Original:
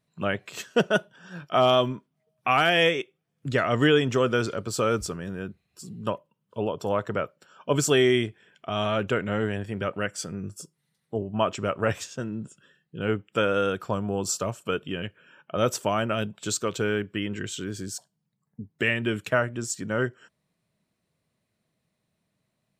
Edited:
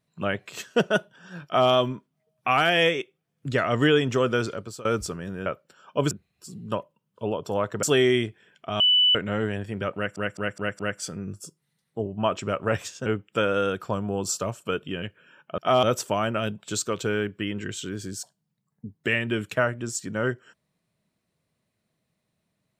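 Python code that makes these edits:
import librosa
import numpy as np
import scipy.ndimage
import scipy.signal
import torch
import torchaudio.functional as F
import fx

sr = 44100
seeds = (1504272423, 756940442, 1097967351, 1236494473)

y = fx.edit(x, sr, fx.duplicate(start_s=1.45, length_s=0.25, to_s=15.58),
    fx.fade_out_to(start_s=4.31, length_s=0.54, curve='qsin', floor_db=-23.0),
    fx.move(start_s=7.18, length_s=0.65, to_s=5.46),
    fx.bleep(start_s=8.8, length_s=0.35, hz=2980.0, db=-15.5),
    fx.stutter(start_s=9.95, slice_s=0.21, count=5),
    fx.cut(start_s=12.22, length_s=0.84), tone=tone)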